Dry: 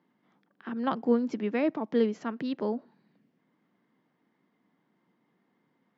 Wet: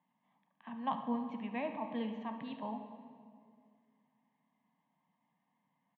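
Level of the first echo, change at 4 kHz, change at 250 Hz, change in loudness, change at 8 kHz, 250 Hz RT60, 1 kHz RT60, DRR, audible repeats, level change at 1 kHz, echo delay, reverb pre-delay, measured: -13.5 dB, -7.0 dB, -10.0 dB, -10.0 dB, no reading, 2.7 s, 2.1 s, 5.5 dB, 1, -2.5 dB, 71 ms, 10 ms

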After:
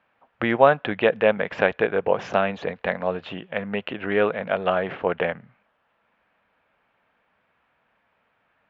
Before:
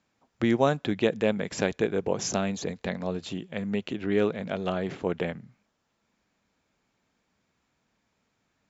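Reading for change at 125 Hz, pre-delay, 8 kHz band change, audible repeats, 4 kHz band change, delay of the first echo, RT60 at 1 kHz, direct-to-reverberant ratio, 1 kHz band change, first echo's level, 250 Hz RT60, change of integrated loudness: -1.5 dB, no reverb, no reading, no echo, +2.0 dB, no echo, no reverb, no reverb, +9.5 dB, no echo, no reverb, +5.0 dB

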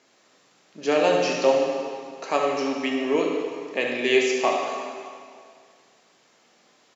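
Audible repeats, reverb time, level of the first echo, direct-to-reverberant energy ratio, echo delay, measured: 1, 2.2 s, -9.5 dB, -1.0 dB, 73 ms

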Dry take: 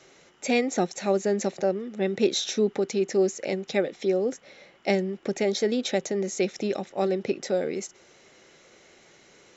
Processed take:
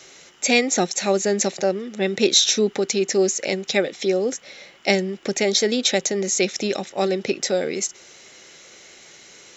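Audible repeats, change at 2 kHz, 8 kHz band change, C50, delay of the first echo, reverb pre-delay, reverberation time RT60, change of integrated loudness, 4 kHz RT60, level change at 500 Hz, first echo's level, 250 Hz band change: no echo, +9.0 dB, no reading, no reverb, no echo, no reverb, no reverb, +6.0 dB, no reverb, +3.5 dB, no echo, +3.0 dB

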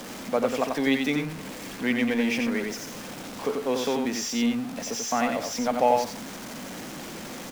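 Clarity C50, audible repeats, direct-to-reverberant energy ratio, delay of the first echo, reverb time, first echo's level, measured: no reverb, 1, no reverb, 89 ms, no reverb, -4.5 dB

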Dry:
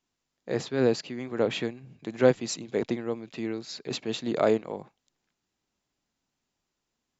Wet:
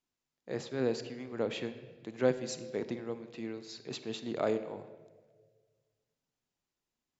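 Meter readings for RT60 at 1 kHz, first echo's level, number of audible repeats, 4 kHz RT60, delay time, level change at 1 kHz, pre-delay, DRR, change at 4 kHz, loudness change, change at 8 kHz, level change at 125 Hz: 1.3 s, no echo, no echo, 1.1 s, no echo, -7.5 dB, 27 ms, 11.0 dB, -7.5 dB, -7.5 dB, no reading, -7.5 dB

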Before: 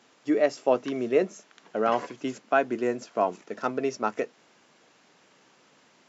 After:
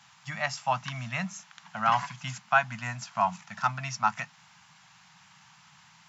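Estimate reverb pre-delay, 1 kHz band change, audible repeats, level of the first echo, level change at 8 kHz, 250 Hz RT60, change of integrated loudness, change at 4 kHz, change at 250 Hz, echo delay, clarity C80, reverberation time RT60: no reverb, +2.5 dB, no echo, no echo, no reading, no reverb, -2.5 dB, +4.5 dB, -11.5 dB, no echo, no reverb, no reverb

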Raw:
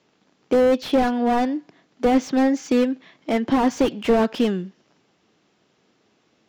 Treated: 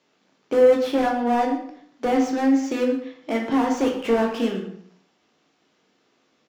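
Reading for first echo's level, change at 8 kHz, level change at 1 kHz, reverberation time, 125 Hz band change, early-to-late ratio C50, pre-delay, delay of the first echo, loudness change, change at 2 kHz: -14.0 dB, no reading, -0.5 dB, 0.65 s, no reading, 6.0 dB, 11 ms, 119 ms, -1.0 dB, -0.5 dB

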